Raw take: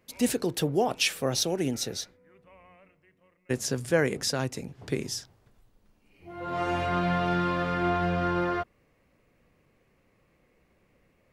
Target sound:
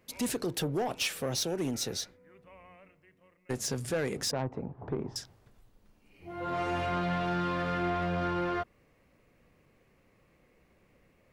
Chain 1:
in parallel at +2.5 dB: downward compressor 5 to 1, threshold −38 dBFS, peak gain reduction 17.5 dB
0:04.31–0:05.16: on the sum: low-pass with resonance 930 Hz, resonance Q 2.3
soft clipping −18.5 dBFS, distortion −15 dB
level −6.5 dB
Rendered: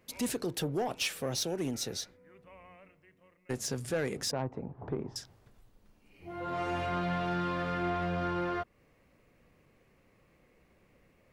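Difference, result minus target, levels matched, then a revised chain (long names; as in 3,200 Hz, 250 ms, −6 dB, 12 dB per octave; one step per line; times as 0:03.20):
downward compressor: peak gain reduction +7 dB
in parallel at +2.5 dB: downward compressor 5 to 1, threshold −29 dBFS, peak gain reduction 10.5 dB
0:04.31–0:05.16: on the sum: low-pass with resonance 930 Hz, resonance Q 2.3
soft clipping −18.5 dBFS, distortion −13 dB
level −6.5 dB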